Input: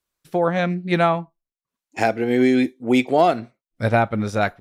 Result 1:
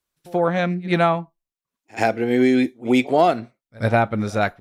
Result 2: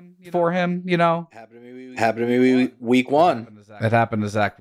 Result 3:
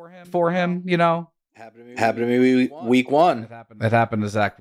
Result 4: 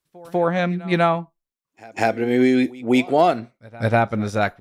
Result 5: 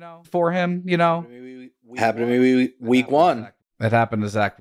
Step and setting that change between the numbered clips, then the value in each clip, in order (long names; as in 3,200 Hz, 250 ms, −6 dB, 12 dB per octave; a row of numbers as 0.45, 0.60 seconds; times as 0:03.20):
backwards echo, delay time: 83, 659, 419, 196, 981 milliseconds